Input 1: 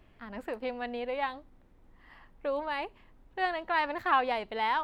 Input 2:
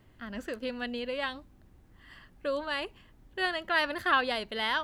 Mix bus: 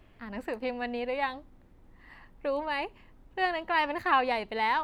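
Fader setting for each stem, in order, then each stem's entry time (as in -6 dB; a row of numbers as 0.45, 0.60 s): +2.0, -11.5 dB; 0.00, 0.00 s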